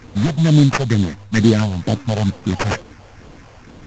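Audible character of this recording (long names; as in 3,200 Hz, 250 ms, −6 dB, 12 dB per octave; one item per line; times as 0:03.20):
phaser sweep stages 4, 2.2 Hz, lowest notch 260–1,600 Hz
aliases and images of a low sample rate 3,800 Hz, jitter 20%
mu-law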